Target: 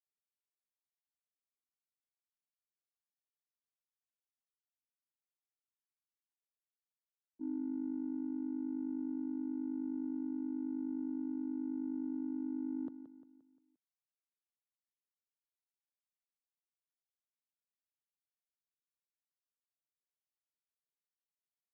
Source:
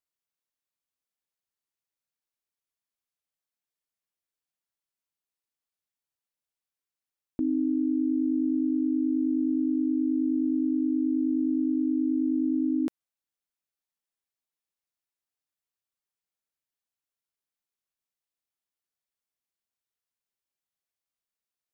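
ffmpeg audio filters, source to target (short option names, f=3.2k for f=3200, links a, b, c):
-filter_complex "[0:a]agate=range=-33dB:threshold=-18dB:ratio=3:detection=peak,acrossover=split=170|180[a][b][c];[c]adynamicsmooth=sensitivity=2.5:basefreq=500[d];[a][b][d]amix=inputs=3:normalize=0,aecho=1:1:175|350|525|700|875:0.299|0.134|0.0605|0.0272|0.0122,volume=-2.5dB"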